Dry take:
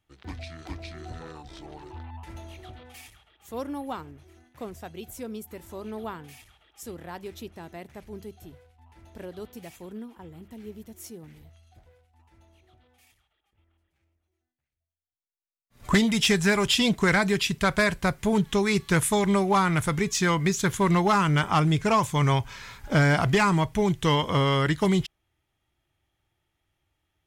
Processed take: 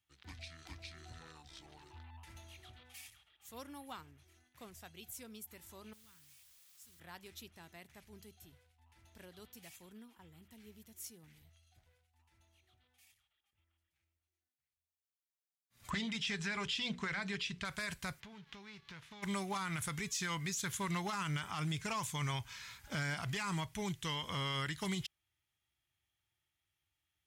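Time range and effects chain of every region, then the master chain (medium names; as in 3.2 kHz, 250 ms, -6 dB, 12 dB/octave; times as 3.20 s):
5.93–7.00 s: amplifier tone stack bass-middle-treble 6-0-2 + waveshaping leveller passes 1 + word length cut 10-bit, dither triangular
15.90–17.65 s: low-pass 4.2 kHz + hum notches 60/120/180/240/300/360/420/480/540 Hz
18.19–19.22 s: formants flattened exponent 0.6 + compression 12:1, threshold -34 dBFS + distance through air 260 m
whole clip: amplifier tone stack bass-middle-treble 5-5-5; peak limiter -31 dBFS; high-pass 59 Hz; trim +2 dB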